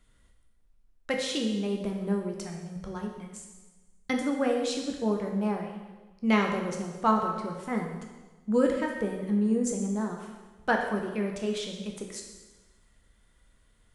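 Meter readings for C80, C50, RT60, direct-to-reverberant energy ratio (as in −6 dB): 6.0 dB, 4.5 dB, 1.2 s, 1.0 dB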